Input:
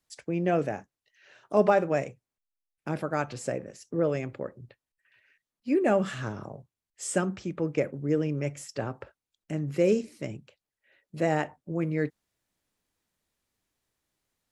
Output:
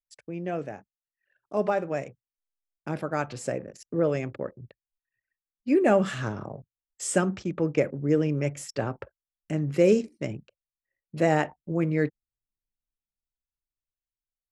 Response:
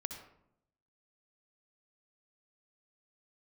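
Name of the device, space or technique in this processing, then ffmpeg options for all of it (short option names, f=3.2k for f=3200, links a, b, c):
voice memo with heavy noise removal: -af "anlmdn=0.00631,dynaudnorm=f=720:g=7:m=11.5dB,volume=-6dB"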